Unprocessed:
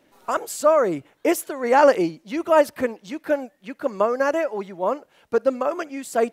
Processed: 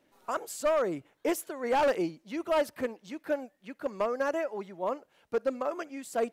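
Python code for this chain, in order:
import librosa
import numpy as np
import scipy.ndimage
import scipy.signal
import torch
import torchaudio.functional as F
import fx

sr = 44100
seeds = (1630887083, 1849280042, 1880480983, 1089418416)

y = np.clip(x, -10.0 ** (-13.0 / 20.0), 10.0 ** (-13.0 / 20.0))
y = y * 10.0 ** (-8.5 / 20.0)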